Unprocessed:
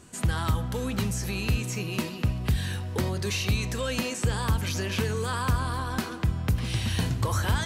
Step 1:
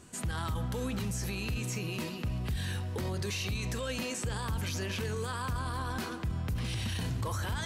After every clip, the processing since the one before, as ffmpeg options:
-af "alimiter=limit=0.0631:level=0:latency=1:release=17,volume=0.75"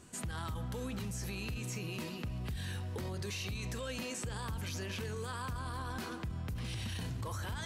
-af "acompressor=threshold=0.0224:ratio=6,volume=0.75"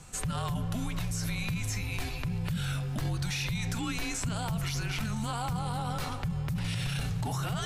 -af "afreqshift=-230,volume=2.24"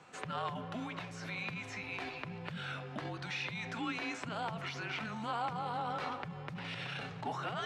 -af "highpass=310,lowpass=2700"

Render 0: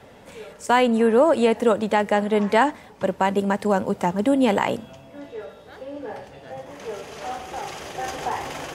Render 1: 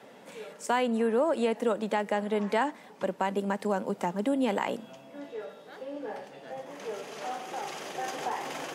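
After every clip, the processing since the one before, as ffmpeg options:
-af "highpass=f=170:w=0.5412,highpass=f=170:w=1.3066,acompressor=threshold=0.0355:ratio=1.5,volume=0.668"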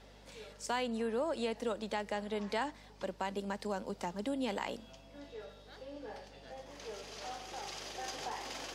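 -af "equalizer=f=4700:w=1.1:g=11.5,aeval=exprs='val(0)+0.00316*(sin(2*PI*50*n/s)+sin(2*PI*2*50*n/s)/2+sin(2*PI*3*50*n/s)/3+sin(2*PI*4*50*n/s)/4+sin(2*PI*5*50*n/s)/5)':c=same,volume=0.355"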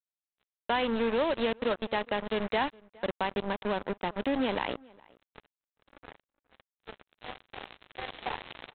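-filter_complex "[0:a]aresample=8000,acrusher=bits=5:mix=0:aa=0.5,aresample=44100,asplit=2[s0][s1];[s1]adelay=414,volume=0.0562,highshelf=f=4000:g=-9.32[s2];[s0][s2]amix=inputs=2:normalize=0,volume=2.11"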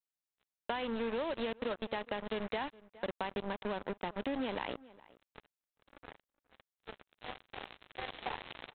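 -af "acompressor=threshold=0.0316:ratio=6,volume=0.75"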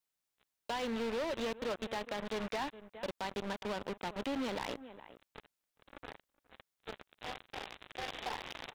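-af "asoftclip=type=hard:threshold=0.0119,volume=2"

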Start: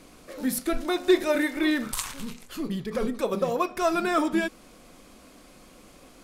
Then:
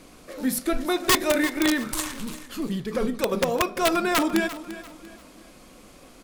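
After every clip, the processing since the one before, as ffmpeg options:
-af "aeval=exprs='(mod(5.62*val(0)+1,2)-1)/5.62':c=same,aecho=1:1:344|688|1032:0.188|0.0659|0.0231,volume=1.26"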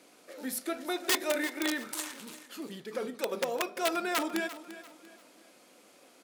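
-af "highpass=340,bandreject=f=1100:w=10,volume=0.447"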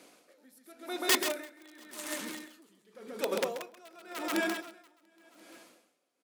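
-filter_complex "[0:a]asplit=2[s0][s1];[s1]aecho=0:1:134|689|819:0.596|0.251|0.158[s2];[s0][s2]amix=inputs=2:normalize=0,aeval=exprs='val(0)*pow(10,-27*(0.5-0.5*cos(2*PI*0.9*n/s))/20)':c=same,volume=1.26"

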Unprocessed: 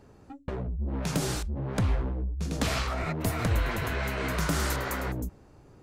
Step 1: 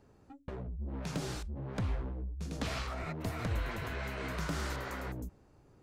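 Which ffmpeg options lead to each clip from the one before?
-filter_complex "[0:a]acrossover=split=6400[s0][s1];[s1]acompressor=threshold=0.00501:ratio=4:attack=1:release=60[s2];[s0][s2]amix=inputs=2:normalize=0,volume=0.398"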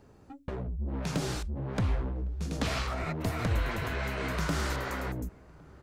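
-filter_complex "[0:a]asplit=2[s0][s1];[s1]adelay=1108,volume=0.0631,highshelf=f=4000:g=-24.9[s2];[s0][s2]amix=inputs=2:normalize=0,volume=1.88"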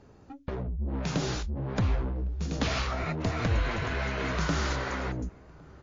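-af "volume=1.33" -ar 16000 -c:a libmp3lame -b:a 32k

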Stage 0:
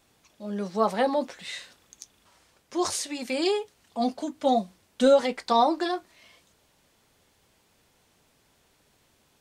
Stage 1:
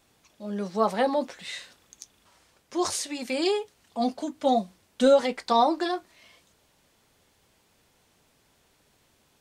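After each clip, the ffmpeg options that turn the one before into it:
-af anull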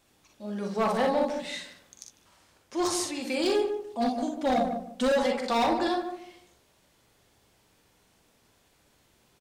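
-filter_complex "[0:a]asplit=2[s0][s1];[s1]aecho=0:1:43|60:0.473|0.501[s2];[s0][s2]amix=inputs=2:normalize=0,asoftclip=type=hard:threshold=0.112,asplit=2[s3][s4];[s4]adelay=149,lowpass=f=850:p=1,volume=0.562,asplit=2[s5][s6];[s6]adelay=149,lowpass=f=850:p=1,volume=0.31,asplit=2[s7][s8];[s8]adelay=149,lowpass=f=850:p=1,volume=0.31,asplit=2[s9][s10];[s10]adelay=149,lowpass=f=850:p=1,volume=0.31[s11];[s5][s7][s9][s11]amix=inputs=4:normalize=0[s12];[s3][s12]amix=inputs=2:normalize=0,volume=0.794"

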